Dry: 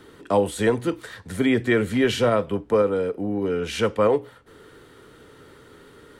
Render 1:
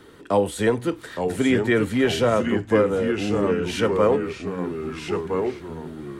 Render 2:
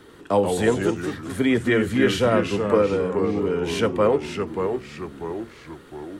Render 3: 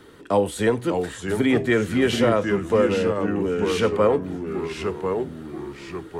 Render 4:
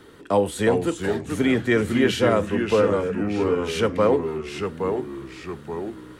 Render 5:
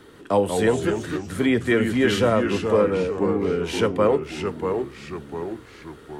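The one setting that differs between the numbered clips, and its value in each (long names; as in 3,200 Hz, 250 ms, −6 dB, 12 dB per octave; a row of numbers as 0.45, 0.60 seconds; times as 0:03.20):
delay with pitch and tempo change per echo, delay time: 829, 95, 560, 331, 152 milliseconds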